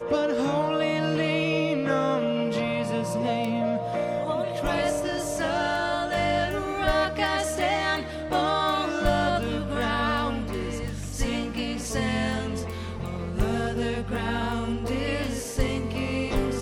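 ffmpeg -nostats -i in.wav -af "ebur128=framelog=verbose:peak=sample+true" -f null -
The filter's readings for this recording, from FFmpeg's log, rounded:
Integrated loudness:
  I:         -26.6 LUFS
  Threshold: -36.6 LUFS
Loudness range:
  LRA:         3.6 LU
  Threshold: -46.7 LUFS
  LRA low:   -28.9 LUFS
  LRA high:  -25.3 LUFS
Sample peak:
  Peak:      -10.1 dBFS
True peak:
  Peak:      -10.1 dBFS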